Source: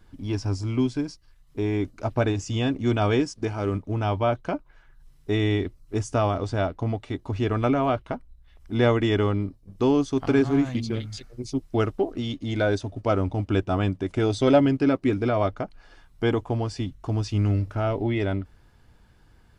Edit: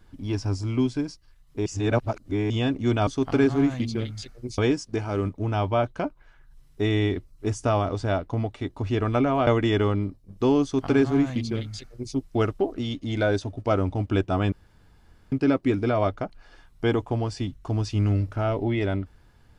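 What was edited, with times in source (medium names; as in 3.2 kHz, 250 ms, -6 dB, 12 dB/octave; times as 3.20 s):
1.66–2.50 s: reverse
7.96–8.86 s: delete
10.02–11.53 s: copy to 3.07 s
13.91–14.71 s: room tone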